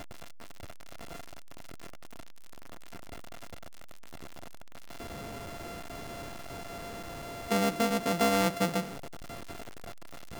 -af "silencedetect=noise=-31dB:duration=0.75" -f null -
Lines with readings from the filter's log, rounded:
silence_start: 0.00
silence_end: 7.51 | silence_duration: 7.51
silence_start: 8.81
silence_end: 10.39 | silence_duration: 1.59